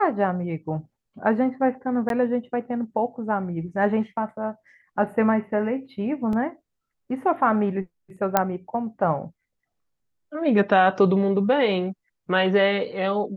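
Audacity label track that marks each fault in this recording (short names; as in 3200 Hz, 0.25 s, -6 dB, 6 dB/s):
2.090000	2.100000	gap 12 ms
6.330000	6.330000	gap 2 ms
8.370000	8.370000	pop -4 dBFS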